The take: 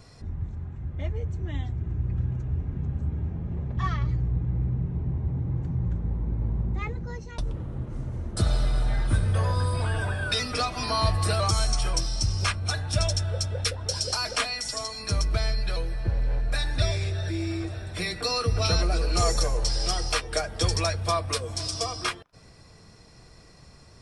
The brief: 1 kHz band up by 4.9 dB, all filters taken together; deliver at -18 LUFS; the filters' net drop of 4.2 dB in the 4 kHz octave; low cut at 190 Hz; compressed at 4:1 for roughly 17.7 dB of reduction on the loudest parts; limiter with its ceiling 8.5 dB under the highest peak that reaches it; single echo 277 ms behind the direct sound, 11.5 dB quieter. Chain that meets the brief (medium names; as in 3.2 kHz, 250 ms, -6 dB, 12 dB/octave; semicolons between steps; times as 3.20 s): high-pass 190 Hz; peaking EQ 1 kHz +6.5 dB; peaking EQ 4 kHz -6 dB; compression 4:1, threshold -41 dBFS; peak limiter -34 dBFS; delay 277 ms -11.5 dB; trim +26 dB